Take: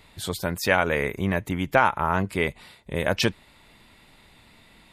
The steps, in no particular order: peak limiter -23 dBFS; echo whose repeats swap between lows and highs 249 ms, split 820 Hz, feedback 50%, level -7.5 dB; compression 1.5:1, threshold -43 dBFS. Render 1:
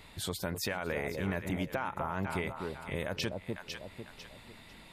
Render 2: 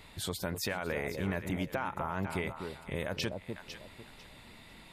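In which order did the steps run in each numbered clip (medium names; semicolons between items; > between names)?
echo whose repeats swap between lows and highs > compression > peak limiter; compression > echo whose repeats swap between lows and highs > peak limiter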